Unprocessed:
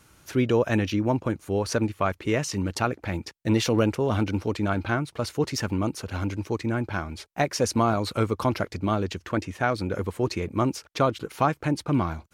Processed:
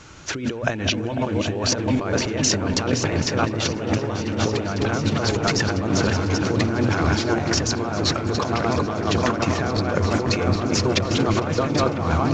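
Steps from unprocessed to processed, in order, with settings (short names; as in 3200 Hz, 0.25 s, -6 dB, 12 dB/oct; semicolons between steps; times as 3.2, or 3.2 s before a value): regenerating reverse delay 0.391 s, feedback 61%, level -9 dB; notches 60/120/180/240 Hz; negative-ratio compressor -32 dBFS, ratio -1; repeats that get brighter 0.499 s, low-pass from 750 Hz, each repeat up 1 oct, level -6 dB; on a send at -17 dB: reverb RT60 3.1 s, pre-delay 0.188 s; on the sum: gain +8 dB; µ-law 128 kbps 16000 Hz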